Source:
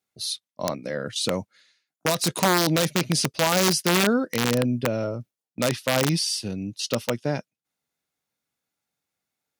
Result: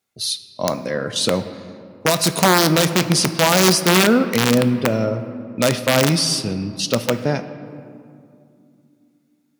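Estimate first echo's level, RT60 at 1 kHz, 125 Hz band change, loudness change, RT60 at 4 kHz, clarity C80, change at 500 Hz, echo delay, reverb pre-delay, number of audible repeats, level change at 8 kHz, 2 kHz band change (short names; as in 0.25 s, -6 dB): none, 2.3 s, +6.5 dB, +6.5 dB, 1.3 s, 12.5 dB, +6.5 dB, none, 4 ms, none, +6.0 dB, +6.5 dB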